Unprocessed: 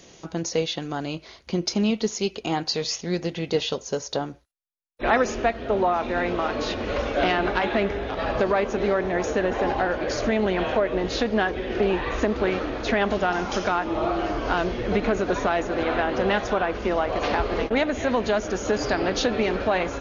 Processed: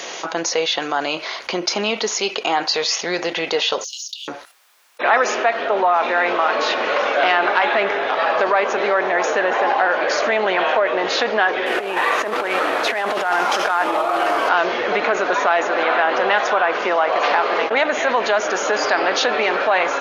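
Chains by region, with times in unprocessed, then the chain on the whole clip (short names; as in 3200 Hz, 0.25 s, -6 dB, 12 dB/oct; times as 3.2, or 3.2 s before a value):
3.84–4.28 sample leveller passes 1 + steep high-pass 2800 Hz 96 dB/oct + compressor, threshold -46 dBFS
11.66–14.49 CVSD 64 kbps + negative-ratio compressor -26 dBFS, ratio -0.5
whole clip: HPF 820 Hz 12 dB/oct; high shelf 3400 Hz -12 dB; fast leveller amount 50%; gain +8.5 dB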